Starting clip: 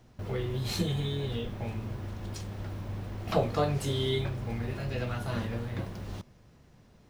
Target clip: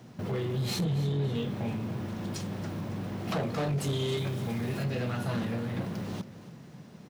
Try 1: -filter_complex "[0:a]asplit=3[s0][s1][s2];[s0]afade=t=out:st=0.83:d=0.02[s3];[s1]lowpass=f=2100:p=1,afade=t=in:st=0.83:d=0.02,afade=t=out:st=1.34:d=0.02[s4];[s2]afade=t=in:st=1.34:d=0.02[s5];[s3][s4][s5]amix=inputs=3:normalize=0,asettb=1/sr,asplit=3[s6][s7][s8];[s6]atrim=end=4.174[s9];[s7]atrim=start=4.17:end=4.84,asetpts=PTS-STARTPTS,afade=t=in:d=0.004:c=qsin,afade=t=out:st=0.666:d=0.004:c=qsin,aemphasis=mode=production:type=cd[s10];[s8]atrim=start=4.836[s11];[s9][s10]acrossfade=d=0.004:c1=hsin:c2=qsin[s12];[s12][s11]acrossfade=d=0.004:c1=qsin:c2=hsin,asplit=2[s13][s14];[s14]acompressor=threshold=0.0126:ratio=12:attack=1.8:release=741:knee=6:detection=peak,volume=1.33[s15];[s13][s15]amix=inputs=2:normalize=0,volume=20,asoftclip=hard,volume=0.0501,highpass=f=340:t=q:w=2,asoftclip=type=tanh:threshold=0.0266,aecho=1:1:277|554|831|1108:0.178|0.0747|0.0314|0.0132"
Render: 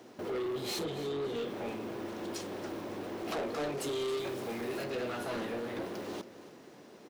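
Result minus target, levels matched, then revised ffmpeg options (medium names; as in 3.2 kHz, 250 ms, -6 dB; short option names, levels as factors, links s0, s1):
125 Hz band -13.5 dB; saturation: distortion +8 dB
-filter_complex "[0:a]asplit=3[s0][s1][s2];[s0]afade=t=out:st=0.83:d=0.02[s3];[s1]lowpass=f=2100:p=1,afade=t=in:st=0.83:d=0.02,afade=t=out:st=1.34:d=0.02[s4];[s2]afade=t=in:st=1.34:d=0.02[s5];[s3][s4][s5]amix=inputs=3:normalize=0,asettb=1/sr,asplit=3[s6][s7][s8];[s6]atrim=end=4.174[s9];[s7]atrim=start=4.17:end=4.84,asetpts=PTS-STARTPTS,afade=t=in:d=0.004:c=qsin,afade=t=out:st=0.666:d=0.004:c=qsin,aemphasis=mode=production:type=cd[s10];[s8]atrim=start=4.836[s11];[s9][s10]acrossfade=d=0.004:c1=hsin:c2=qsin[s12];[s12][s11]acrossfade=d=0.004:c1=qsin:c2=hsin,asplit=2[s13][s14];[s14]acompressor=threshold=0.0126:ratio=12:attack=1.8:release=741:knee=6:detection=peak,volume=1.33[s15];[s13][s15]amix=inputs=2:normalize=0,volume=20,asoftclip=hard,volume=0.0501,highpass=f=160:t=q:w=2,asoftclip=type=tanh:threshold=0.0668,aecho=1:1:277|554|831|1108:0.178|0.0747|0.0314|0.0132"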